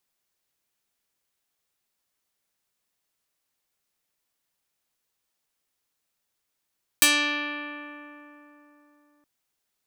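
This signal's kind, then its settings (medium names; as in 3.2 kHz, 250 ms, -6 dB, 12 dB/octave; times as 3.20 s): plucked string D4, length 2.22 s, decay 3.74 s, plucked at 0.42, medium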